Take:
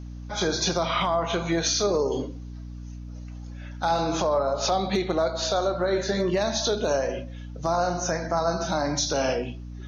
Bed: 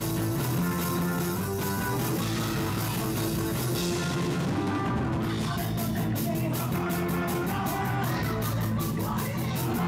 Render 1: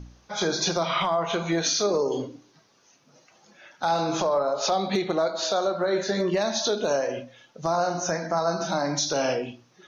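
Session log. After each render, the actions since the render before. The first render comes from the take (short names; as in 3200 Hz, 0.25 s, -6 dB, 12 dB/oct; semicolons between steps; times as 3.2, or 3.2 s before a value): de-hum 60 Hz, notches 5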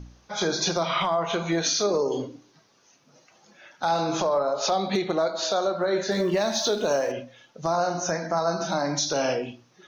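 6.11–7.12 G.711 law mismatch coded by mu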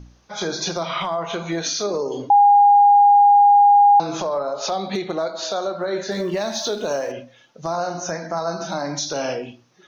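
2.3–4 bleep 815 Hz -8.5 dBFS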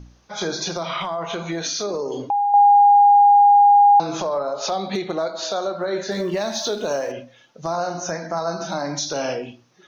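0.62–2.54 compressor 2.5:1, threshold -22 dBFS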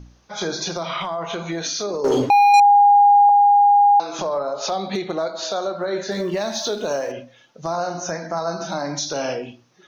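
2.04–2.6 sample leveller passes 3; 3.29–4.19 Bessel high-pass 530 Hz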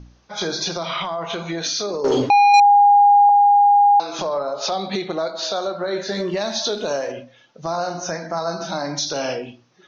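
LPF 6200 Hz 24 dB/oct; dynamic EQ 4400 Hz, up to +4 dB, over -38 dBFS, Q 0.74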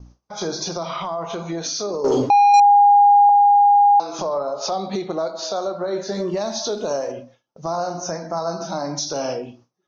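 gate with hold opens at -35 dBFS; band shelf 2500 Hz -8.5 dB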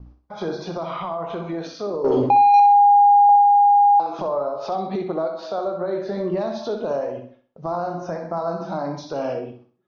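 air absorption 350 m; flutter echo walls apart 10.9 m, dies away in 0.42 s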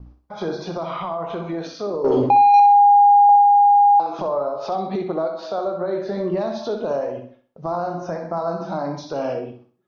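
gain +1 dB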